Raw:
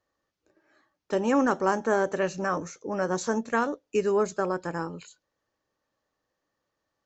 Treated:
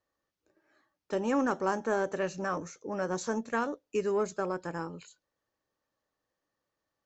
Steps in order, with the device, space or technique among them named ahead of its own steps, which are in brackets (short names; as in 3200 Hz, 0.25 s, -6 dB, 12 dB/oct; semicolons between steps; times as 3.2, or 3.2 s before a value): parallel distortion (in parallel at -14 dB: hard clip -25 dBFS, distortion -8 dB); on the sum: gain -6 dB